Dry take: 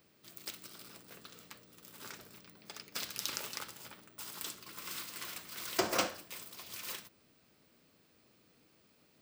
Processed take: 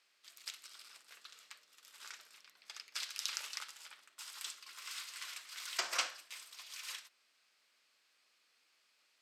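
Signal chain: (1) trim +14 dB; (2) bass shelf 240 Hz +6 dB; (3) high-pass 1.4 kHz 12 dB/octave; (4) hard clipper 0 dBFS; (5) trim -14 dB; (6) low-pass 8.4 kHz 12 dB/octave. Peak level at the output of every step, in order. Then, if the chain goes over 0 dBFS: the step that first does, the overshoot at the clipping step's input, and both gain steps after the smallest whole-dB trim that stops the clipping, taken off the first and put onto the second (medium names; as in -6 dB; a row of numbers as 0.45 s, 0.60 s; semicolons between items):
-1.5 dBFS, -1.0 dBFS, -2.5 dBFS, -2.5 dBFS, -16.5 dBFS, -17.5 dBFS; nothing clips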